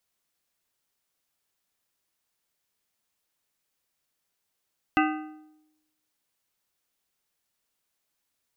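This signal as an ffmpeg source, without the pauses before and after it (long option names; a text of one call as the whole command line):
ffmpeg -f lavfi -i "aevalsrc='0.1*pow(10,-3*t/0.92)*sin(2*PI*308*t)+0.0794*pow(10,-3*t/0.699)*sin(2*PI*770*t)+0.0631*pow(10,-3*t/0.607)*sin(2*PI*1232*t)+0.0501*pow(10,-3*t/0.568)*sin(2*PI*1540*t)+0.0398*pow(10,-3*t/0.525)*sin(2*PI*2002*t)+0.0316*pow(10,-3*t/0.484)*sin(2*PI*2618*t)+0.0251*pow(10,-3*t/0.476)*sin(2*PI*2772*t)':duration=1.55:sample_rate=44100" out.wav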